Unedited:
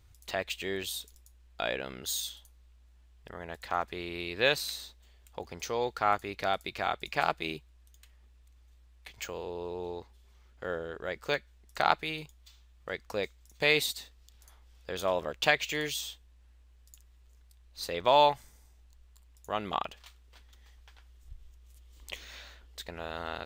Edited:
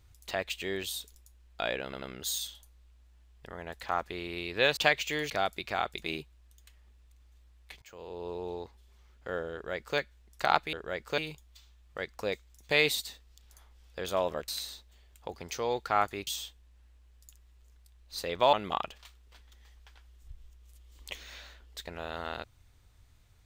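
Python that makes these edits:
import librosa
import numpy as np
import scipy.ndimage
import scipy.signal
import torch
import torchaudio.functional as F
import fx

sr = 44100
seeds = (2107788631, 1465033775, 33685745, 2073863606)

y = fx.edit(x, sr, fx.stutter(start_s=1.84, slice_s=0.09, count=3),
    fx.swap(start_s=4.59, length_s=1.79, other_s=15.39, other_length_s=0.53),
    fx.cut(start_s=7.1, length_s=0.28),
    fx.fade_in_from(start_s=9.18, length_s=0.47, floor_db=-23.0),
    fx.duplicate(start_s=10.89, length_s=0.45, to_s=12.09),
    fx.cut(start_s=18.18, length_s=1.36), tone=tone)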